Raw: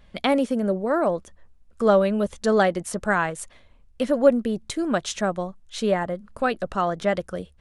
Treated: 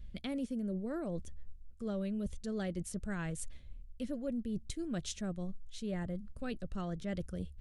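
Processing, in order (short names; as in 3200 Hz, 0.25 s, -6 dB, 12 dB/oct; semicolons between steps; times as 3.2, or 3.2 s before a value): passive tone stack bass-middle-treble 10-0-1; reverse; compressor, threshold -49 dBFS, peak gain reduction 13 dB; reverse; gain +14 dB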